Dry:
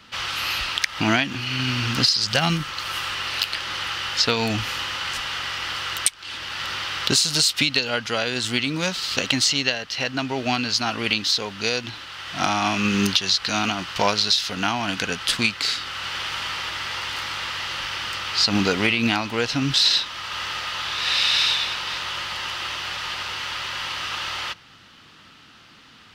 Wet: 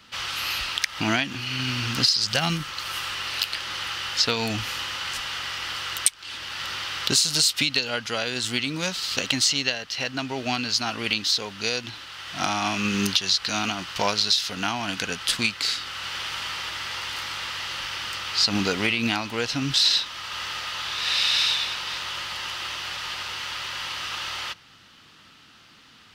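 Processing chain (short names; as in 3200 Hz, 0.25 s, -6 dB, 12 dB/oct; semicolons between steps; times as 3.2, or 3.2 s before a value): high shelf 4800 Hz +5.5 dB; gain -4 dB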